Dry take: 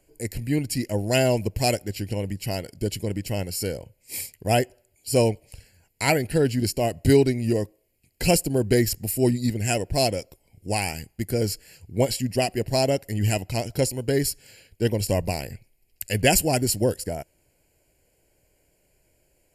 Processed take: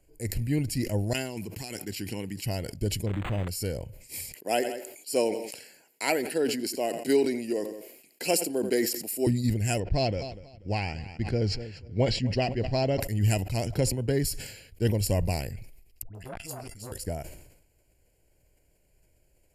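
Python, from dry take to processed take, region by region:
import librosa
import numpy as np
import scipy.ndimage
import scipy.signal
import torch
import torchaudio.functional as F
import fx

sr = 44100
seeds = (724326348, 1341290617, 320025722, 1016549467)

y = fx.chain(x, sr, fx.highpass(hz=240.0, slope=12),
    fx.peak_eq(hz=580.0, db=-13.0, octaves=0.6),
    fx.over_compress(threshold_db=-33.0, ratio=-1.0), at=(1.13, 2.45))
y = fx.chain(y, sr, fx.crossing_spikes(level_db=-25.0),
    fx.resample_linear(factor=8), at=(3.06, 3.48))
y = fx.chain(y, sr, fx.highpass(hz=270.0, slope=24),
    fx.echo_feedback(ms=85, feedback_pct=34, wet_db=-22), at=(4.34, 9.27))
y = fx.chain(y, sr, fx.lowpass(hz=4900.0, slope=24),
    fx.echo_feedback(ms=244, feedback_pct=44, wet_db=-20.5), at=(9.8, 13.0))
y = fx.chain(y, sr, fx.lowpass(hz=4000.0, slope=6),
    fx.band_squash(depth_pct=40), at=(13.66, 14.25))
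y = fx.chain(y, sr, fx.comb_fb(f0_hz=680.0, decay_s=0.22, harmonics='all', damping=0.0, mix_pct=80),
    fx.dispersion(late='highs', ms=128.0, hz=860.0),
    fx.transformer_sat(knee_hz=1200.0), at=(16.02, 16.92))
y = fx.low_shelf(y, sr, hz=110.0, db=9.5)
y = fx.sustainer(y, sr, db_per_s=64.0)
y = F.gain(torch.from_numpy(y), -5.5).numpy()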